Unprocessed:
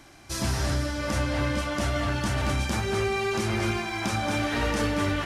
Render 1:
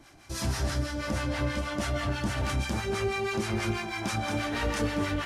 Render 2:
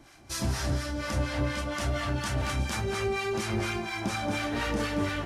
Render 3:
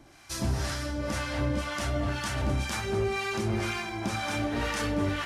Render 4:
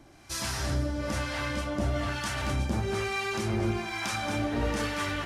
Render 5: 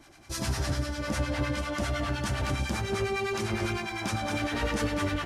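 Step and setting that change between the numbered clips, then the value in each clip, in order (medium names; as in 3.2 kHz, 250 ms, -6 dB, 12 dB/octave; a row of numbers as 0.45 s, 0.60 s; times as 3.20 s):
harmonic tremolo, rate: 6.2 Hz, 4.2 Hz, 2 Hz, 1.1 Hz, 9.9 Hz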